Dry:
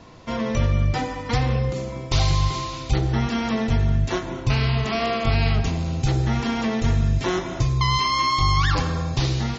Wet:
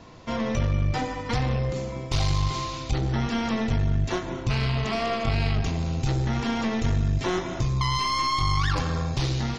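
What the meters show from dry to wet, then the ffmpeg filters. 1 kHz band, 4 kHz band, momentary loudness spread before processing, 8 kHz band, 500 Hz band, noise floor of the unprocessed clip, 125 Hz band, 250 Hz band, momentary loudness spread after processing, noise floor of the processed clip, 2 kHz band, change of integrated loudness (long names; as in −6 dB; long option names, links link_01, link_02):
−3.5 dB, −4.0 dB, 6 LU, can't be measured, −3.0 dB, −33 dBFS, −3.5 dB, −3.0 dB, 5 LU, −34 dBFS, −3.5 dB, −3.5 dB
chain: -filter_complex "[0:a]asplit=2[link_01][link_02];[link_02]alimiter=limit=-16dB:level=0:latency=1:release=153,volume=-1dB[link_03];[link_01][link_03]amix=inputs=2:normalize=0,aeval=exprs='(tanh(3.16*val(0)+0.4)-tanh(0.4))/3.16':channel_layout=same,volume=-5.5dB"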